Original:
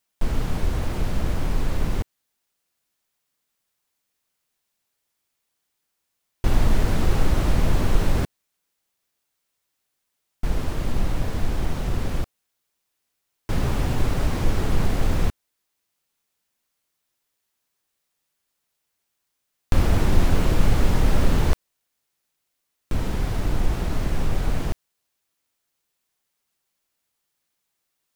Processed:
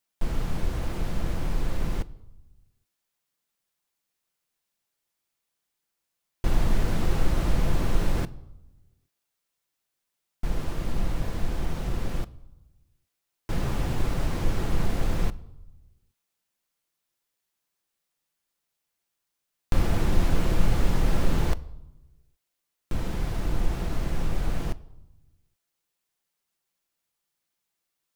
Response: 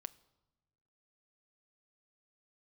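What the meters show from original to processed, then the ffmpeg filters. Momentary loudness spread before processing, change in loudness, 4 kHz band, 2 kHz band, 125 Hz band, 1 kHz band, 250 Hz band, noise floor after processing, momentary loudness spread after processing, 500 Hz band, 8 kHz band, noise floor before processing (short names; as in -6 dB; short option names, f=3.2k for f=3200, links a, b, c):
8 LU, -4.5 dB, -4.5 dB, -4.5 dB, -5.0 dB, -4.5 dB, -4.0 dB, -82 dBFS, 9 LU, -4.5 dB, -4.5 dB, -78 dBFS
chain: -filter_complex "[1:a]atrim=start_sample=2205[a];[0:a][a]afir=irnorm=-1:irlink=0"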